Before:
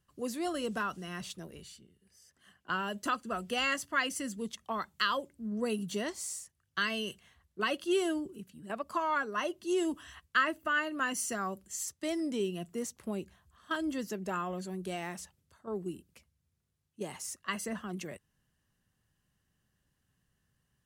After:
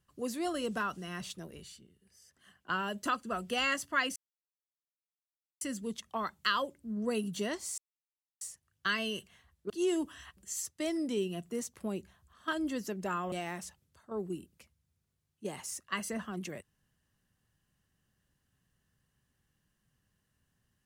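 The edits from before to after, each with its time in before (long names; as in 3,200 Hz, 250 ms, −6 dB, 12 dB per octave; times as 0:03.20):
0:04.16: splice in silence 1.45 s
0:06.33: splice in silence 0.63 s
0:07.62–0:09.59: remove
0:10.26–0:11.60: remove
0:14.55–0:14.88: remove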